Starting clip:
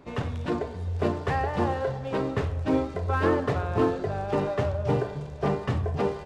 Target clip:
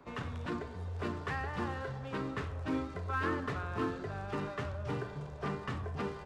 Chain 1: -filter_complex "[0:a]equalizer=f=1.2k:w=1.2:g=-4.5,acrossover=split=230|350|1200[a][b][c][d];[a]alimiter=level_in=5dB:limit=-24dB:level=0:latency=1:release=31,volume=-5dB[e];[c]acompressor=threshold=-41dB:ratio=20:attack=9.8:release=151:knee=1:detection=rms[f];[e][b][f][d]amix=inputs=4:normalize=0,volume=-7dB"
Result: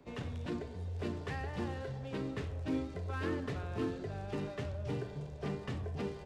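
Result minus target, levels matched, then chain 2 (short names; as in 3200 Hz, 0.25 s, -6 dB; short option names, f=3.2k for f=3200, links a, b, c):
1000 Hz band -5.5 dB
-filter_complex "[0:a]equalizer=f=1.2k:w=1.2:g=7,acrossover=split=230|350|1200[a][b][c][d];[a]alimiter=level_in=5dB:limit=-24dB:level=0:latency=1:release=31,volume=-5dB[e];[c]acompressor=threshold=-41dB:ratio=20:attack=9.8:release=151:knee=1:detection=rms[f];[e][b][f][d]amix=inputs=4:normalize=0,volume=-7dB"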